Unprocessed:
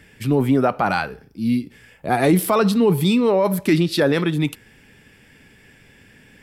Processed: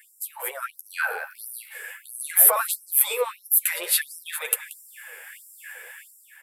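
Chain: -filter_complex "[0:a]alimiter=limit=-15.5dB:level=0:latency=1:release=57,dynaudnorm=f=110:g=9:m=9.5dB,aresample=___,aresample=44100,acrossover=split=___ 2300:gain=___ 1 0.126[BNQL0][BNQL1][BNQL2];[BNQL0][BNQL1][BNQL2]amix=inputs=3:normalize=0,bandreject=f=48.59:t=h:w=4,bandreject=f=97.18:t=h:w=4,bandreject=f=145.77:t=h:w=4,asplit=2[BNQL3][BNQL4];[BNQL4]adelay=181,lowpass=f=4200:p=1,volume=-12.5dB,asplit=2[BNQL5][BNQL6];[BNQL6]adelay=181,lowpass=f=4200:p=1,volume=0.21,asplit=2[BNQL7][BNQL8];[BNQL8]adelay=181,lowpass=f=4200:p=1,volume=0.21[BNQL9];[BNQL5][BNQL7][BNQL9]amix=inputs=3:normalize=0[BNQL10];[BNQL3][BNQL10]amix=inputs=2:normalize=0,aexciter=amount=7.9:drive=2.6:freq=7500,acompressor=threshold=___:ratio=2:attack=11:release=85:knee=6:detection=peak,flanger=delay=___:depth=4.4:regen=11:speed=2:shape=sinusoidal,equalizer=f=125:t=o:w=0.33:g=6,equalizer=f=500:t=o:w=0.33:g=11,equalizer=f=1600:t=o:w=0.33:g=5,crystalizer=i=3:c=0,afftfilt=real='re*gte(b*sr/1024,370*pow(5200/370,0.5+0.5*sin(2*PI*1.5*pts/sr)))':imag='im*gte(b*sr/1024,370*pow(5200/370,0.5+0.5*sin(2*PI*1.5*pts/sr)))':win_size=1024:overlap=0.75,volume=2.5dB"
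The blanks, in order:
32000, 600, 0.2, -28dB, 8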